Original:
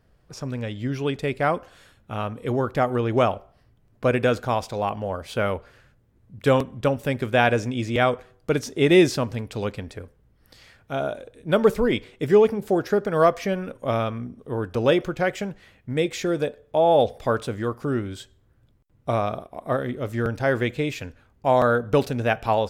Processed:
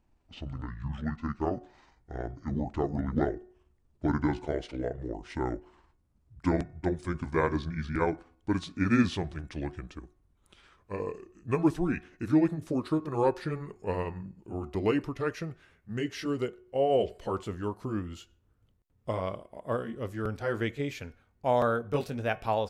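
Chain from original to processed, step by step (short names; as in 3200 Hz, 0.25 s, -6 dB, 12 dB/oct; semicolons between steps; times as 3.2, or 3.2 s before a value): gliding pitch shift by -11 st ending unshifted; de-hum 364.7 Hz, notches 7; gain -6.5 dB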